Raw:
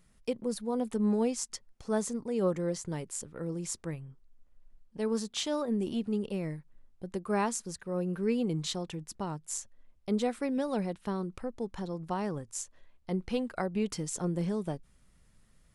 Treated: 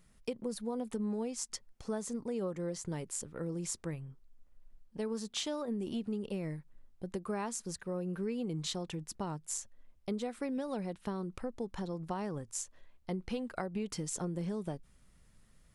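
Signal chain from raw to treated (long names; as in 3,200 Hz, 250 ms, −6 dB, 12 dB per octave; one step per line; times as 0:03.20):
downward compressor, threshold −33 dBFS, peak gain reduction 9.5 dB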